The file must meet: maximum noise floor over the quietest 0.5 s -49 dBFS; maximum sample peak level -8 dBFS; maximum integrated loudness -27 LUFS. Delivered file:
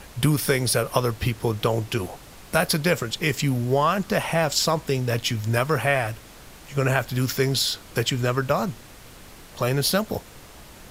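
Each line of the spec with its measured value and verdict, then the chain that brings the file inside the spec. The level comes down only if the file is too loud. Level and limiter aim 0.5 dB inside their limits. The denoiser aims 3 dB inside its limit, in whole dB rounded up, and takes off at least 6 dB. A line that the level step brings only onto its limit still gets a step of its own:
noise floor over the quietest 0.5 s -45 dBFS: fail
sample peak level -3.5 dBFS: fail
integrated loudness -23.5 LUFS: fail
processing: denoiser 6 dB, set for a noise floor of -45 dBFS; gain -4 dB; limiter -8.5 dBFS

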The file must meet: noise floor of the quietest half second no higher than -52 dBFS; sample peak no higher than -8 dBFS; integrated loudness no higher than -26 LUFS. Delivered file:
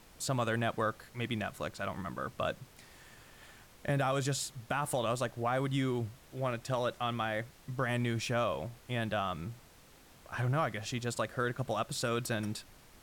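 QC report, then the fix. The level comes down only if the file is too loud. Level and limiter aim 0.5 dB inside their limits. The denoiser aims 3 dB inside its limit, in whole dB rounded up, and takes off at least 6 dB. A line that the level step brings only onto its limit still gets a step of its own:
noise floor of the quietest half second -59 dBFS: OK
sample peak -20.0 dBFS: OK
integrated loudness -35.0 LUFS: OK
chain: none

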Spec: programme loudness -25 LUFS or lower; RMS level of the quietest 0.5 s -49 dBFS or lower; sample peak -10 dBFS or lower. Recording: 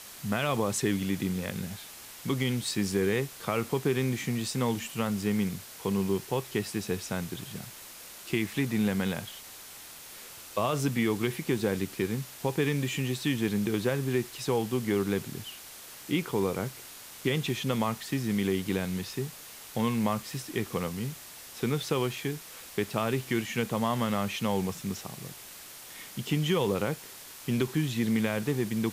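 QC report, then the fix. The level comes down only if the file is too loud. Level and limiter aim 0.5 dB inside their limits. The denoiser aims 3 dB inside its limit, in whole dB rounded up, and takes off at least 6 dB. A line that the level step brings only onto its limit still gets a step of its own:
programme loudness -30.5 LUFS: OK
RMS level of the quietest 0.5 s -47 dBFS: fail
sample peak -13.0 dBFS: OK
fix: denoiser 6 dB, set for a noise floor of -47 dBFS

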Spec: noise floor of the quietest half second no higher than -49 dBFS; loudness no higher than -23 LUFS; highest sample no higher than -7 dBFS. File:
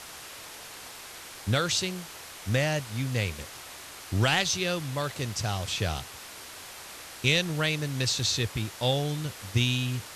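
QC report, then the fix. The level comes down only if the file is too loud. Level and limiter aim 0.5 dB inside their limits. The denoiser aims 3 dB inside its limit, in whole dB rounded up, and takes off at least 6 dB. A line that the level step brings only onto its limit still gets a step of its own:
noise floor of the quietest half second -44 dBFS: fail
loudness -28.0 LUFS: OK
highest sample -9.0 dBFS: OK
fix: denoiser 8 dB, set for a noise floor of -44 dBFS

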